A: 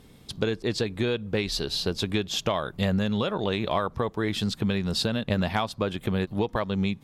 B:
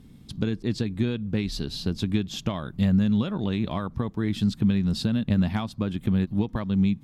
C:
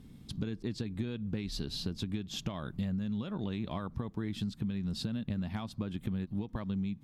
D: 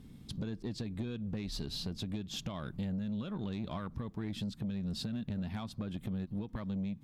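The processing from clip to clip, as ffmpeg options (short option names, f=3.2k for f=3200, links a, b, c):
-af "lowshelf=f=340:t=q:w=1.5:g=9,volume=-6dB"
-af "acompressor=threshold=-29dB:ratio=6,volume=-3dB"
-af "asoftclip=type=tanh:threshold=-30dB"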